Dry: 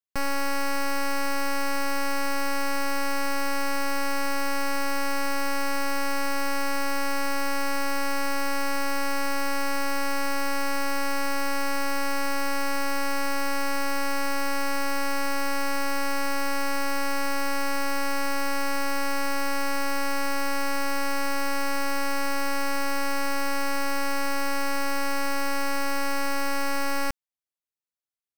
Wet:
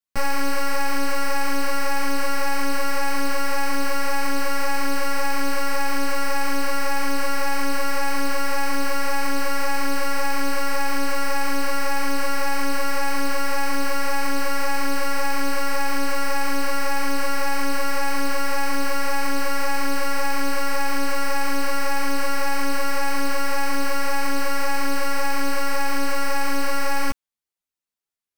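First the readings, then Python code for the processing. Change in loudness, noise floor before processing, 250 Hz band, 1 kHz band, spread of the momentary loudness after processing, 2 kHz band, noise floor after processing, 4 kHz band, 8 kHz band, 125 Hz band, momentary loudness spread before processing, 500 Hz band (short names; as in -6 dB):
+3.0 dB, -29 dBFS, +3.0 dB, +3.0 dB, 0 LU, +3.0 dB, -20 dBFS, +3.0 dB, +3.0 dB, n/a, 0 LU, +3.0 dB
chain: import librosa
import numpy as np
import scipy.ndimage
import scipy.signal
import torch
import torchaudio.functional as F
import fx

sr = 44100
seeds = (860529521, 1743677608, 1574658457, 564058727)

y = fx.ensemble(x, sr)
y = y * 10.0 ** (6.0 / 20.0)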